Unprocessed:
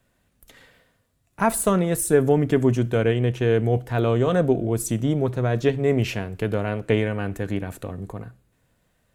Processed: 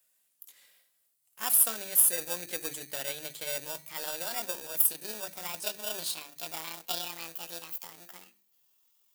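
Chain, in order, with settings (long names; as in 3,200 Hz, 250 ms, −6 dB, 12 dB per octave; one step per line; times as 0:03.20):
pitch glide at a constant tempo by +11 semitones starting unshifted
high-shelf EQ 8,500 Hz +5.5 dB
mains-hum notches 50/100/150/200/250/300/350 Hz
in parallel at −5.5 dB: sample-rate reduction 2,100 Hz, jitter 0%
on the sum: first difference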